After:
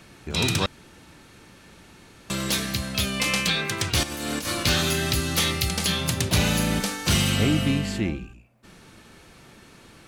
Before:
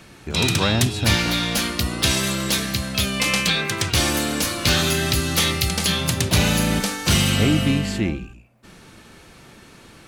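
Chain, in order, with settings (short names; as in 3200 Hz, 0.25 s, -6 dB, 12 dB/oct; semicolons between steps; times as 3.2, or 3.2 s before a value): 0.66–2.3 room tone; 4.03–4.63 negative-ratio compressor -25 dBFS, ratio -0.5; gain -3.5 dB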